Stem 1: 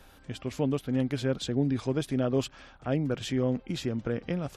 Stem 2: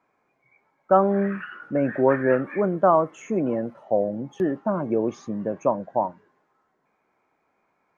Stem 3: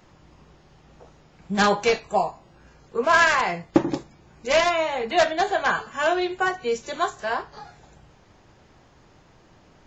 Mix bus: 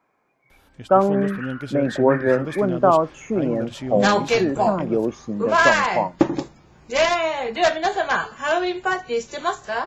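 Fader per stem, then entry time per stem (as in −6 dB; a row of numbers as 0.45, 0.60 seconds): −1.5, +2.0, +1.0 decibels; 0.50, 0.00, 2.45 seconds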